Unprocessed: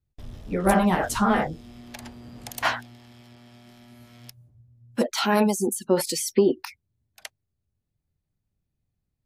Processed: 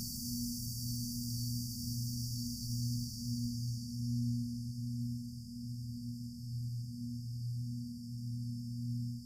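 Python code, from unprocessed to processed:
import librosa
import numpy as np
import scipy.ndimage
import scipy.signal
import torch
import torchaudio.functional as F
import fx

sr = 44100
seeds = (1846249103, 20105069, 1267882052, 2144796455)

y = fx.paulstretch(x, sr, seeds[0], factor=12.0, window_s=1.0, from_s=2.7)
y = fx.rider(y, sr, range_db=3, speed_s=0.5)
y = fx.brickwall_bandstop(y, sr, low_hz=250.0, high_hz=4500.0)
y = fx.high_shelf(y, sr, hz=2600.0, db=-7.0)
y = F.gain(torch.from_numpy(y), 8.5).numpy()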